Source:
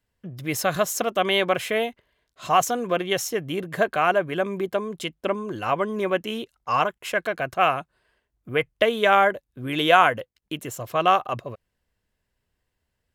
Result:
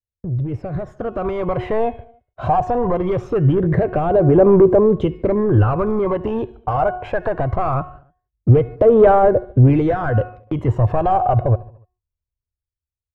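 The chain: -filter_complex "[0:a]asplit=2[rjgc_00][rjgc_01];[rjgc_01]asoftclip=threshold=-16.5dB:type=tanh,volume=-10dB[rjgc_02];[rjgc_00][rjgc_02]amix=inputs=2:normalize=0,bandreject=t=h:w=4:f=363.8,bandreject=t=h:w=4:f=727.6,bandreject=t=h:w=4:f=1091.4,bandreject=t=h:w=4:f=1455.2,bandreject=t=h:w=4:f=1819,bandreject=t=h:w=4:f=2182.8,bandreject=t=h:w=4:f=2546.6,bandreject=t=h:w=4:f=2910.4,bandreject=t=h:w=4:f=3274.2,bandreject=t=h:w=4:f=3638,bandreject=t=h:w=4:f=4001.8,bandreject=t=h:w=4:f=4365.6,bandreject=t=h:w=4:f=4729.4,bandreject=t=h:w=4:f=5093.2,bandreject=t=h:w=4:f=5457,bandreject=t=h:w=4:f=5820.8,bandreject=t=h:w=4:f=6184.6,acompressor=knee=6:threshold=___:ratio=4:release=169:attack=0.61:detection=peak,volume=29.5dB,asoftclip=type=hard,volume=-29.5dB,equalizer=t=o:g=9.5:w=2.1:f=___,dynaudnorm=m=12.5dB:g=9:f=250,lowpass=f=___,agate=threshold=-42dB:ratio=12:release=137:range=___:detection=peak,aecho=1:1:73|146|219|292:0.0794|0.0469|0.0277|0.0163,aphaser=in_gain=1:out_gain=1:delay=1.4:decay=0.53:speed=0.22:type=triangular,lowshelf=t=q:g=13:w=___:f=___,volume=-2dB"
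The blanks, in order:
-27dB, 440, 1100, -36dB, 1.5, 140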